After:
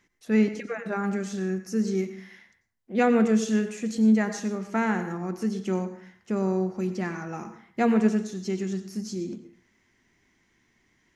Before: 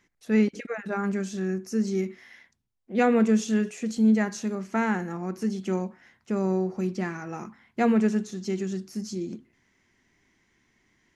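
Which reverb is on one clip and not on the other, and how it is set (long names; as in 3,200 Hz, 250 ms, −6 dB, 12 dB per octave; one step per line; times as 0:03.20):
dense smooth reverb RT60 0.51 s, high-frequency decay 0.65×, pre-delay 80 ms, DRR 10.5 dB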